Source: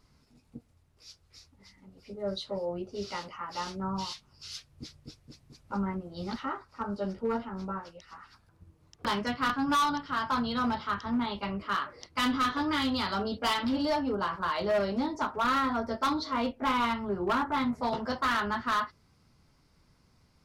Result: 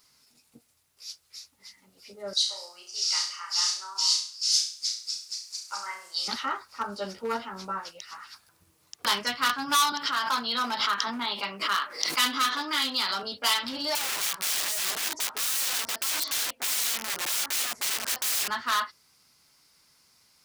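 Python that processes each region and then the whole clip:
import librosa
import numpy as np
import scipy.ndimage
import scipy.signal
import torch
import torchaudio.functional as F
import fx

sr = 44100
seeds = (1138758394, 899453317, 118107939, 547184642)

y = fx.chain(x, sr, fx.highpass(hz=1100.0, slope=12),
    fx.band_shelf(hz=6400.0, db=9.5, octaves=1.2),
    fx.room_flutter(wall_m=5.8, rt60_s=0.46), at=(2.33, 6.28))
y = fx.chain(y, sr, fx.highpass(hz=170.0, slope=24),
    fx.pre_swell(db_per_s=63.0), at=(9.92, 13.23))
y = fx.chain(y, sr, fx.overflow_wrap(gain_db=30.5),
    fx.high_shelf(hz=9900.0, db=-8.5), at=(13.95, 18.48))
y = fx.tilt_eq(y, sr, slope=4.5)
y = fx.rider(y, sr, range_db=4, speed_s=2.0)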